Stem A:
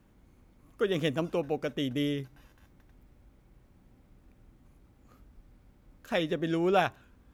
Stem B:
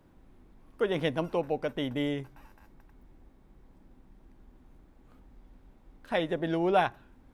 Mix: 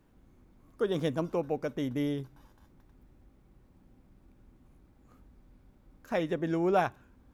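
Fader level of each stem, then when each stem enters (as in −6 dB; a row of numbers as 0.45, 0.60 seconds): −4.5, −8.0 decibels; 0.00, 0.00 seconds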